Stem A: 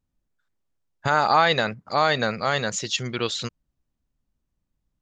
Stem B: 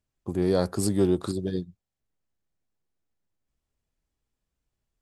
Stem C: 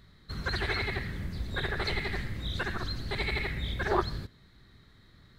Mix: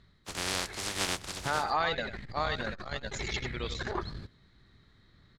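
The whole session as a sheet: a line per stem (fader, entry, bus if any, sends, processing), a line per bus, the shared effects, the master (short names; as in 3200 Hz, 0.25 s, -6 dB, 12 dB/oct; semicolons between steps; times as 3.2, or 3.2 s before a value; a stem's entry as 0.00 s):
-9.5 dB, 0.40 s, no send, echo send -8.5 dB, reverb removal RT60 1.1 s
-7.0 dB, 0.00 s, no send, echo send -23.5 dB, spectral contrast lowered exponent 0.13
-3.5 dB, 0.00 s, no send, no echo send, auto duck -12 dB, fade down 0.50 s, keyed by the second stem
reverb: off
echo: echo 94 ms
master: LPF 7000 Hz 12 dB/oct; core saturation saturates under 450 Hz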